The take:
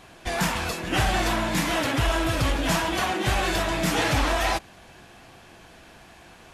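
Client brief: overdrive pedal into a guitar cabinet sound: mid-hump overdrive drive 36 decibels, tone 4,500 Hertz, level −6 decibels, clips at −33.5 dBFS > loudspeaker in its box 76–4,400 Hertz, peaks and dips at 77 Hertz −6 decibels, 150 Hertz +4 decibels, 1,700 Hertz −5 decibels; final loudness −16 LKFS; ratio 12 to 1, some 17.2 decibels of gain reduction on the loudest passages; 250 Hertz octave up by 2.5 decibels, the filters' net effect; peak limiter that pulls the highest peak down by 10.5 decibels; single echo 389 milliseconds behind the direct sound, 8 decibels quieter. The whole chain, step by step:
parametric band 250 Hz +3 dB
downward compressor 12 to 1, threshold −36 dBFS
brickwall limiter −36.5 dBFS
single-tap delay 389 ms −8 dB
mid-hump overdrive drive 36 dB, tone 4,500 Hz, level −6 dB, clips at −33.5 dBFS
loudspeaker in its box 76–4,400 Hz, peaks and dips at 77 Hz −6 dB, 150 Hz +4 dB, 1,700 Hz −5 dB
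level +23.5 dB

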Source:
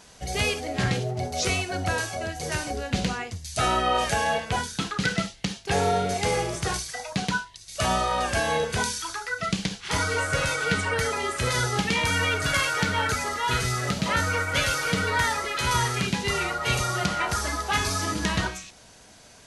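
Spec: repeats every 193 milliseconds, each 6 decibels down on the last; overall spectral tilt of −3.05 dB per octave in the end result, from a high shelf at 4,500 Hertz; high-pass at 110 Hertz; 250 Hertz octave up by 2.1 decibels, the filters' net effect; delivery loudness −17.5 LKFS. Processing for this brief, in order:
high-pass filter 110 Hz
parametric band 250 Hz +3.5 dB
high-shelf EQ 4,500 Hz +4 dB
repeating echo 193 ms, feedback 50%, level −6 dB
level +6 dB

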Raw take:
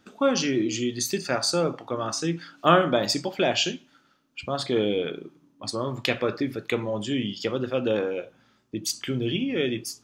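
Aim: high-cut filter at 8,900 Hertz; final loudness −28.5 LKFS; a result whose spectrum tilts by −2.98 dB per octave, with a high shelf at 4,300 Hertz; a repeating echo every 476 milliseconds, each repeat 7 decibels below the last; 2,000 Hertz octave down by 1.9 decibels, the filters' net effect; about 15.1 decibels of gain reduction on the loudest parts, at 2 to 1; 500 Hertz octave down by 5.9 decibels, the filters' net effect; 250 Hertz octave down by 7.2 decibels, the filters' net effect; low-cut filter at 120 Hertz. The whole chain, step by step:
high-pass filter 120 Hz
low-pass filter 8,900 Hz
parametric band 250 Hz −7.5 dB
parametric band 500 Hz −5 dB
parametric band 2,000 Hz −3 dB
high-shelf EQ 4,300 Hz +3 dB
downward compressor 2 to 1, threshold −44 dBFS
repeating echo 476 ms, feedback 45%, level −7 dB
level +10.5 dB

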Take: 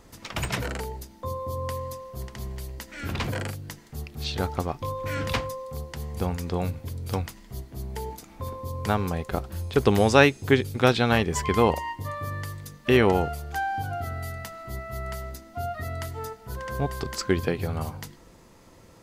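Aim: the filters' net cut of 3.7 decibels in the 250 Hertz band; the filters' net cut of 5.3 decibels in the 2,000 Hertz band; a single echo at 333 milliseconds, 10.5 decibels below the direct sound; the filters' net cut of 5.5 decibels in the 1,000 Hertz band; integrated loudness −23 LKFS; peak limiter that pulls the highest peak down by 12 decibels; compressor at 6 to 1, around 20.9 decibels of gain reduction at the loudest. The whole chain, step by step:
parametric band 250 Hz −4.5 dB
parametric band 1,000 Hz −6 dB
parametric band 2,000 Hz −5 dB
downward compressor 6 to 1, threshold −40 dBFS
brickwall limiter −36.5 dBFS
single-tap delay 333 ms −10.5 dB
level +23 dB

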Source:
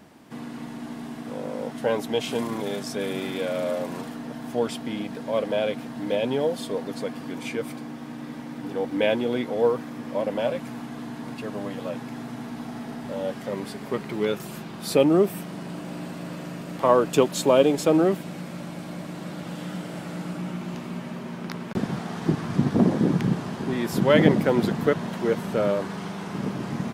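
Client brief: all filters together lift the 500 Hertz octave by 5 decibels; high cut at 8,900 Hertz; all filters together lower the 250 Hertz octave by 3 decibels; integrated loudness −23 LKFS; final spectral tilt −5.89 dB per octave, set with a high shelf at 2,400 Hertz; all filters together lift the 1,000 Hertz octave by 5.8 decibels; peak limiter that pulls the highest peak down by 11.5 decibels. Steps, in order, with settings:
low-pass filter 8,900 Hz
parametric band 250 Hz −6.5 dB
parametric band 500 Hz +6 dB
parametric band 1,000 Hz +7 dB
high-shelf EQ 2,400 Hz −7.5 dB
level +3.5 dB
brickwall limiter −9.5 dBFS

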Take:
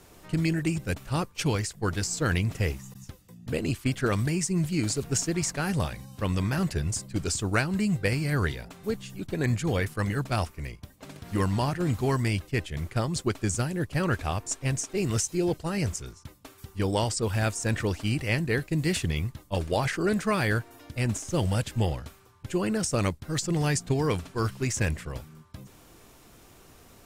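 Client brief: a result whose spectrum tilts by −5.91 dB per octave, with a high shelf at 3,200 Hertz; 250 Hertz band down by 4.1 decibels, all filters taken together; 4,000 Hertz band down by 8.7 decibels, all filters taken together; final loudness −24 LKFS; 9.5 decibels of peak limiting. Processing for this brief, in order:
parametric band 250 Hz −6.5 dB
high-shelf EQ 3,200 Hz −7.5 dB
parametric band 4,000 Hz −6 dB
level +9.5 dB
brickwall limiter −14 dBFS

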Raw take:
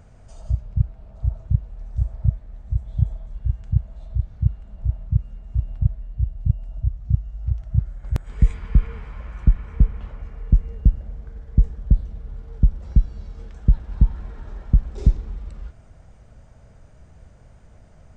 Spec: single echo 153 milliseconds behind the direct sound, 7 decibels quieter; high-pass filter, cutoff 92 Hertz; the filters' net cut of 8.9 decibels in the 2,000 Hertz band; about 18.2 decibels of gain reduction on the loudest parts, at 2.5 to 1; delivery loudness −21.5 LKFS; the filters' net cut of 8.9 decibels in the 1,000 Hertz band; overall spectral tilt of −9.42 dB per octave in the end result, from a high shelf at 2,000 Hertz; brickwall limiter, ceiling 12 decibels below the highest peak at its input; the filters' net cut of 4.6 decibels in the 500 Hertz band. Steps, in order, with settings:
high-pass filter 92 Hz
parametric band 500 Hz −3.5 dB
parametric band 1,000 Hz −7.5 dB
high-shelf EQ 2,000 Hz −8.5 dB
parametric band 2,000 Hz −3.5 dB
downward compressor 2.5 to 1, threshold −45 dBFS
brickwall limiter −37.5 dBFS
single-tap delay 153 ms −7 dB
level +29.5 dB

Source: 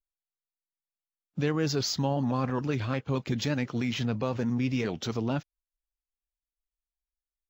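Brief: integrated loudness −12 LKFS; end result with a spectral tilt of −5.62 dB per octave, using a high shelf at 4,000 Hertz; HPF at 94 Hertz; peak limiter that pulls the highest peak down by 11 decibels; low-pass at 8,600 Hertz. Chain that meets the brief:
high-pass filter 94 Hz
low-pass filter 8,600 Hz
high-shelf EQ 4,000 Hz −5.5 dB
level +23.5 dB
brickwall limiter −2.5 dBFS

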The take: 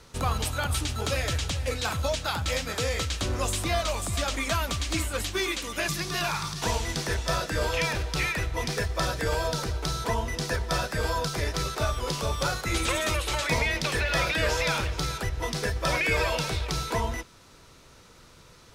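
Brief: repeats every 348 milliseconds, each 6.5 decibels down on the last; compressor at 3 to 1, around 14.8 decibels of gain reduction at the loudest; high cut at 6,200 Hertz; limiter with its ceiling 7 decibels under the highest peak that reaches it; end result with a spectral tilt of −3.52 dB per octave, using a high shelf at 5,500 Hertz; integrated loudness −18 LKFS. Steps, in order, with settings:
low-pass filter 6,200 Hz
high-shelf EQ 5,500 Hz +6 dB
downward compressor 3 to 1, threshold −43 dBFS
brickwall limiter −31.5 dBFS
repeating echo 348 ms, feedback 47%, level −6.5 dB
level +23 dB

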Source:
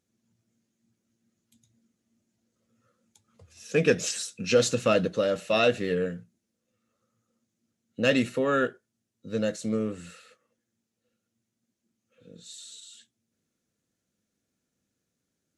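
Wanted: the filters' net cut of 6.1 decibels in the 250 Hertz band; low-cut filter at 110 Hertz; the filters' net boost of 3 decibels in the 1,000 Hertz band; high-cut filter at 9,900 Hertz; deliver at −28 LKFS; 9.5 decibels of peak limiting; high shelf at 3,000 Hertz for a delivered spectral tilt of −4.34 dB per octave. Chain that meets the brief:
high-pass filter 110 Hz
low-pass filter 9,900 Hz
parametric band 250 Hz −7.5 dB
parametric band 1,000 Hz +6.5 dB
high-shelf EQ 3,000 Hz −7.5 dB
level +3 dB
brickwall limiter −16.5 dBFS

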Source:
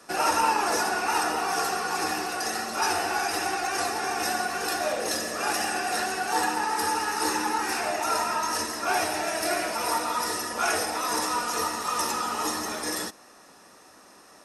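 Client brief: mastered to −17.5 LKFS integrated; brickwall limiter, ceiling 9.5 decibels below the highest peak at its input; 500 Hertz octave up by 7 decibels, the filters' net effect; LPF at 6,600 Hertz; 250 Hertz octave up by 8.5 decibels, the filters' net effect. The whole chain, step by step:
low-pass filter 6,600 Hz
parametric band 250 Hz +8.5 dB
parametric band 500 Hz +7 dB
level +9.5 dB
brickwall limiter −8.5 dBFS

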